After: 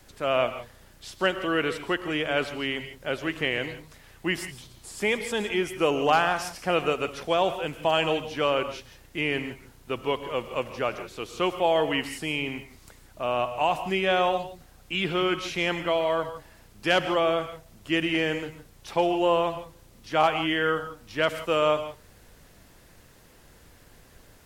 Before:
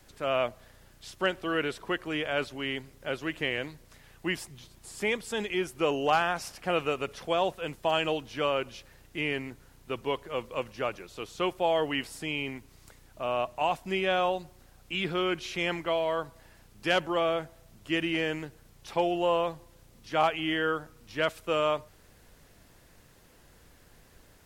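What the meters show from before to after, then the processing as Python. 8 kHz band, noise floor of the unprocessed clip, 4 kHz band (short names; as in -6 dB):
+4.0 dB, -58 dBFS, +4.0 dB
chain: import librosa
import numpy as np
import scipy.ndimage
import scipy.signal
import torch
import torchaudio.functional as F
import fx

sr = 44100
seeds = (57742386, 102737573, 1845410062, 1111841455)

y = fx.rev_gated(x, sr, seeds[0], gate_ms=190, shape='rising', drr_db=10.5)
y = y * librosa.db_to_amplitude(3.5)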